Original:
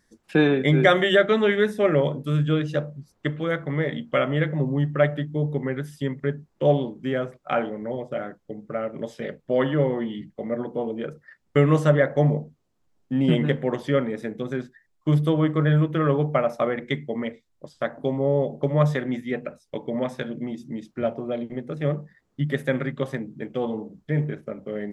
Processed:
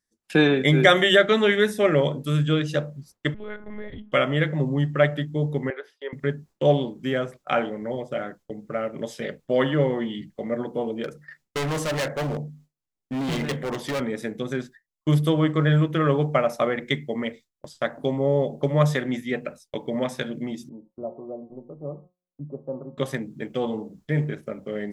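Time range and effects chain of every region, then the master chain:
3.34–4.12 high shelf 2400 Hz -11.5 dB + compressor 2:1, threshold -39 dBFS + monotone LPC vocoder at 8 kHz 210 Hz
5.7–6.13 elliptic high-pass 420 Hz, stop band 80 dB + air absorption 320 m
11.04–14.01 bell 2000 Hz +3 dB 0.41 oct + notches 50/100/150/200/250/300 Hz + hard clip -24.5 dBFS
20.69–22.98 steep low-pass 1100 Hz 72 dB/oct + bell 84 Hz -6 dB 2.7 oct + resonator 180 Hz, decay 0.86 s
whole clip: gate with hold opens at -39 dBFS; high shelf 3100 Hz +10.5 dB

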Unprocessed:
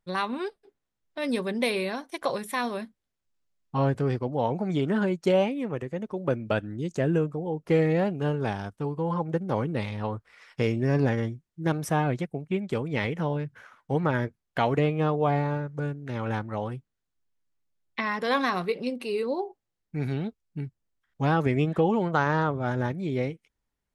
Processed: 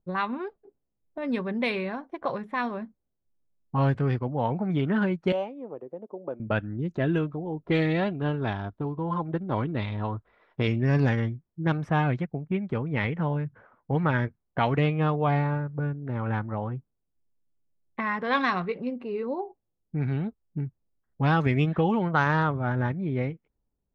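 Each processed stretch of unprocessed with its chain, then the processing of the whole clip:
5.32–6.4 HPF 490 Hz + bell 1900 Hz -13 dB 1.6 oct
6.94–10.68 bell 3700 Hz +12 dB 0.48 oct + comb 3 ms, depth 31%
whole clip: dynamic EQ 460 Hz, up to -7 dB, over -39 dBFS, Q 0.71; low-pass opened by the level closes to 550 Hz, open at -18.5 dBFS; gain +4 dB

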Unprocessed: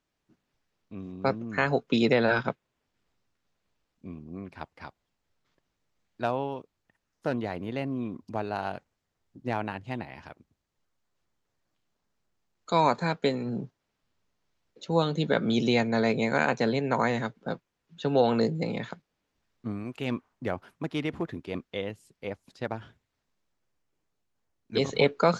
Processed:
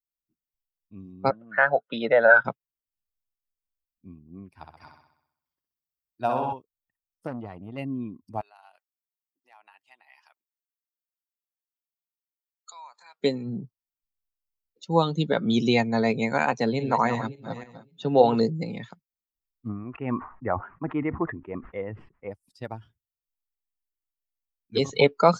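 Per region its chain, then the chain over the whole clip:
1.3–2.45 speaker cabinet 210–3300 Hz, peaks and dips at 260 Hz -9 dB, 380 Hz -9 dB, 600 Hz +8 dB, 1100 Hz -5 dB, 1500 Hz +10 dB, 2500 Hz -9 dB + mismatched tape noise reduction encoder only
4.57–6.53 HPF 49 Hz + flutter echo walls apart 10.9 m, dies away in 1.1 s
7.27–7.78 high shelf 3800 Hz -9 dB + core saturation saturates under 890 Hz
8.41–13.2 compressor 4:1, threshold -36 dBFS + HPF 870 Hz
16.51–18.41 regenerating reverse delay 0.282 s, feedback 42%, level -8 dB + HPF 58 Hz
19.69–22.31 LPF 2000 Hz 24 dB/oct + bell 1200 Hz +6.5 dB 2.2 oct + sustainer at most 95 dB/s
whole clip: per-bin expansion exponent 1.5; dynamic EQ 860 Hz, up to +4 dB, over -39 dBFS, Q 1.3; gain +4.5 dB

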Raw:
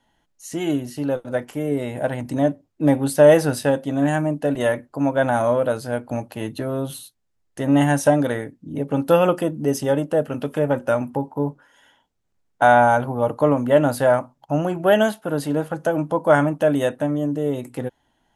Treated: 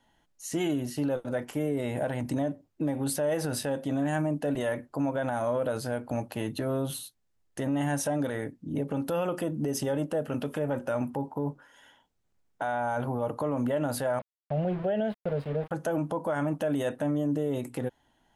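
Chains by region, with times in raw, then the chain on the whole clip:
14.19–15.71 fixed phaser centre 300 Hz, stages 6 + sample gate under -33 dBFS + air absorption 470 m
whole clip: compressor, threshold -18 dBFS; limiter -19.5 dBFS; gain -1.5 dB

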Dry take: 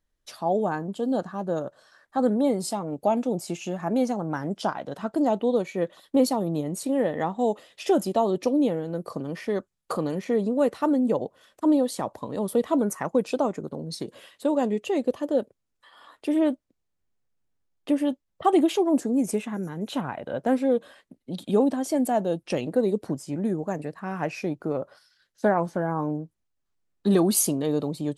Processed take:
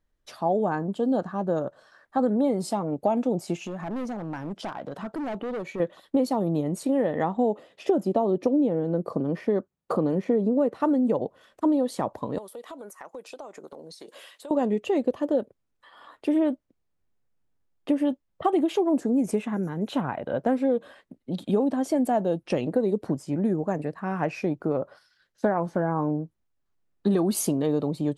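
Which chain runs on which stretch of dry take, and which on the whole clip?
3.64–5.8 hard clip -25.5 dBFS + compressor 5:1, threshold -33 dBFS
7.37–10.8 HPF 180 Hz 6 dB/oct + tilt shelf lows +6 dB, about 860 Hz
12.38–14.51 HPF 480 Hz + high shelf 3400 Hz +10 dB + compressor 5:1, threshold -41 dBFS
whole clip: high shelf 3300 Hz -9.5 dB; compressor, threshold -22 dBFS; gain +3 dB

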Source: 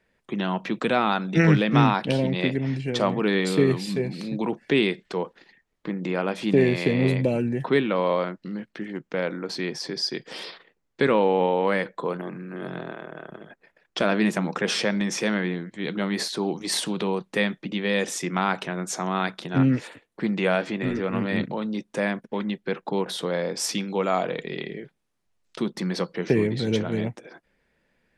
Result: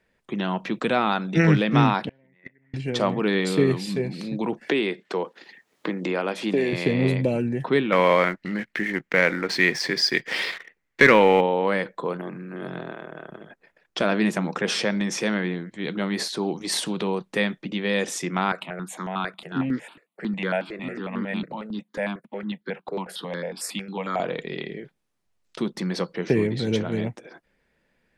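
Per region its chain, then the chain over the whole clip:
2.09–2.74 synth low-pass 1900 Hz, resonance Q 6.4 + gate -13 dBFS, range -38 dB
4.61–6.73 HPF 240 Hz + three-band squash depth 70%
7.92–11.41 bell 2000 Hz +14 dB 0.86 oct + sample leveller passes 1
18.52–24.2 steep high-pass 160 Hz + bell 5900 Hz -10.5 dB 0.2 oct + step phaser 11 Hz 860–2600 Hz
whole clip: dry

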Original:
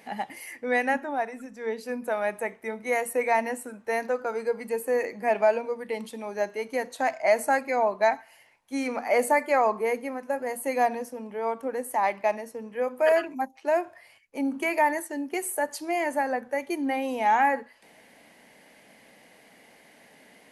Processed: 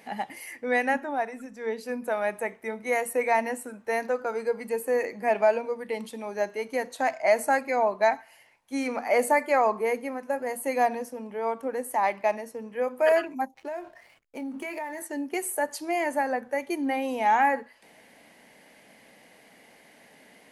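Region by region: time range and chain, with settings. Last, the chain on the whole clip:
13.54–15.02 doubler 23 ms -11 dB + compressor 5:1, threshold -32 dBFS + backlash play -52.5 dBFS
whole clip: dry

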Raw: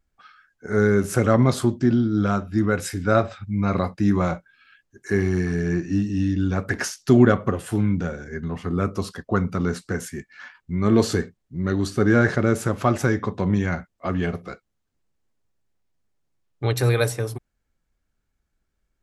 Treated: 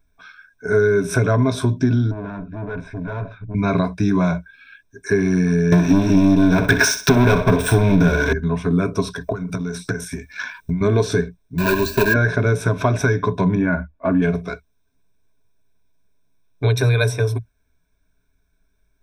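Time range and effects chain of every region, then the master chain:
2.11–3.55 bell 740 Hz -6.5 dB 1.8 oct + tube stage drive 32 dB, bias 0.45 + LPF 1400 Hz
5.72–8.33 sample leveller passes 5 + flutter echo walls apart 10.6 m, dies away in 0.3 s
9.16–10.81 high shelf 5900 Hz +10.5 dB + compressor 8:1, threshold -34 dBFS + transient shaper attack +11 dB, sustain +6 dB
11.58–12.16 block floating point 3-bit + ripple EQ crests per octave 1.4, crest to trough 14 dB
13.55–14.22 LPF 1700 Hz + comb 3.5 ms, depth 53%
whole clip: ripple EQ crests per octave 1.6, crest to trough 15 dB; compressor 4:1, threshold -19 dBFS; dynamic EQ 8900 Hz, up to -6 dB, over -49 dBFS, Q 1.2; gain +5 dB

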